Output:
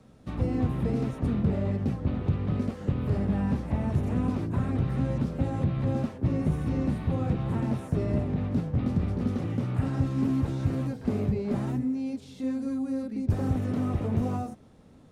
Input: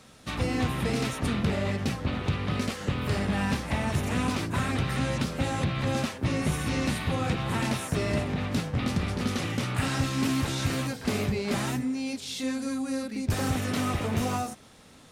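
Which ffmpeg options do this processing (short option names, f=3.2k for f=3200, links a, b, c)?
-filter_complex "[0:a]tiltshelf=f=970:g=9.5,acrossover=split=480|1800[a][b][c];[c]alimiter=level_in=15dB:limit=-24dB:level=0:latency=1:release=65,volume=-15dB[d];[a][b][d]amix=inputs=3:normalize=0,volume=-7dB"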